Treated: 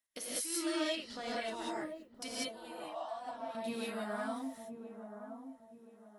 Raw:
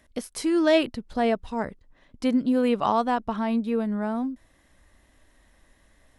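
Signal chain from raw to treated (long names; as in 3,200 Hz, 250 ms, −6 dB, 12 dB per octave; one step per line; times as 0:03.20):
spectral magnitudes quantised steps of 15 dB
noise gate −50 dBFS, range −25 dB
spectral tilt +4.5 dB per octave
downward compressor 5 to 1, threshold −36 dBFS, peak gain reduction 17 dB
0:00.76–0:01.28: high-frequency loss of the air 69 metres
0:02.28–0:03.55: four-pole ladder high-pass 600 Hz, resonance 70%
delay with a low-pass on its return 1,025 ms, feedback 34%, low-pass 910 Hz, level −7.5 dB
reverb whose tail is shaped and stops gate 220 ms rising, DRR −7 dB
level −7 dB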